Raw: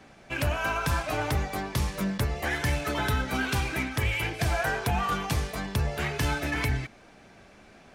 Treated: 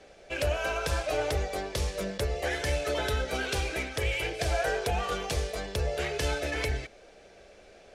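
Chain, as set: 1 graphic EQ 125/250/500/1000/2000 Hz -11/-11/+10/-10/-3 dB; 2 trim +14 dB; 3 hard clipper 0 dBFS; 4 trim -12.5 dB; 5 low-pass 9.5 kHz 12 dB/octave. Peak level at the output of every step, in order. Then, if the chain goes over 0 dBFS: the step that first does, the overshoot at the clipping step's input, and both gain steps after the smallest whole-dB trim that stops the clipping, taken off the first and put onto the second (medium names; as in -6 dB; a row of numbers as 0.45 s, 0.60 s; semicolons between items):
-17.5 dBFS, -3.5 dBFS, -3.5 dBFS, -16.0 dBFS, -16.5 dBFS; nothing clips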